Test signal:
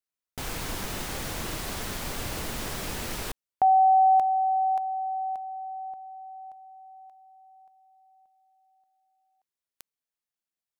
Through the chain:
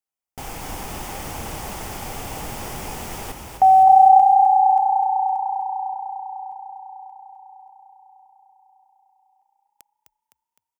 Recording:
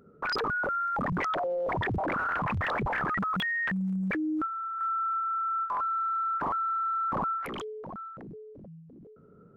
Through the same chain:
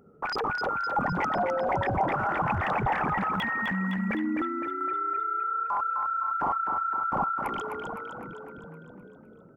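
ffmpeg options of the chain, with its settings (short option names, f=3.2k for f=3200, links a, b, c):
-filter_complex "[0:a]equalizer=f=800:t=o:w=0.33:g=9,equalizer=f=1.6k:t=o:w=0.33:g=-4,equalizer=f=4k:t=o:w=0.33:g=-9,asplit=8[a][b][c][d][e][f][g][h];[b]adelay=256,afreqshift=30,volume=-6dB[i];[c]adelay=512,afreqshift=60,volume=-11dB[j];[d]adelay=768,afreqshift=90,volume=-16.1dB[k];[e]adelay=1024,afreqshift=120,volume=-21.1dB[l];[f]adelay=1280,afreqshift=150,volume=-26.1dB[m];[g]adelay=1536,afreqshift=180,volume=-31.2dB[n];[h]adelay=1792,afreqshift=210,volume=-36.2dB[o];[a][i][j][k][l][m][n][o]amix=inputs=8:normalize=0"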